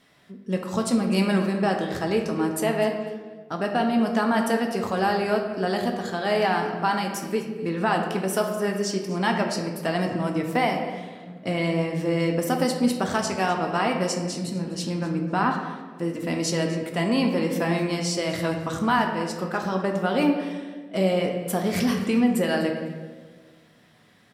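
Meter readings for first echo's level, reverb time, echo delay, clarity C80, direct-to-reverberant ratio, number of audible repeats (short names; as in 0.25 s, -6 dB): -17.5 dB, 1.5 s, 0.251 s, 7.0 dB, 2.0 dB, 1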